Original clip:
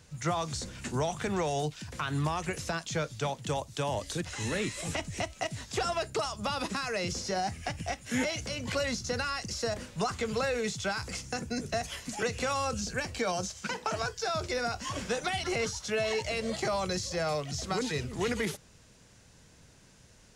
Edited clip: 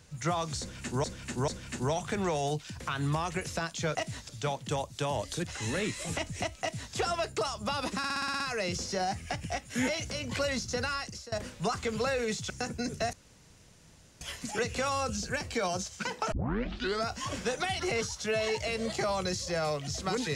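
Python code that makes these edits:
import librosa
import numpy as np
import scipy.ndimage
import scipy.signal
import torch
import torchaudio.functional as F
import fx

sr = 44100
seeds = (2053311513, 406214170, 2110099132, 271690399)

y = fx.edit(x, sr, fx.repeat(start_s=0.6, length_s=0.44, count=3),
    fx.duplicate(start_s=5.39, length_s=0.34, to_s=3.07),
    fx.stutter(start_s=6.76, slice_s=0.06, count=8),
    fx.fade_out_to(start_s=9.31, length_s=0.37, floor_db=-20.5),
    fx.cut(start_s=10.86, length_s=0.36),
    fx.insert_room_tone(at_s=11.85, length_s=1.08),
    fx.tape_start(start_s=13.96, length_s=0.74), tone=tone)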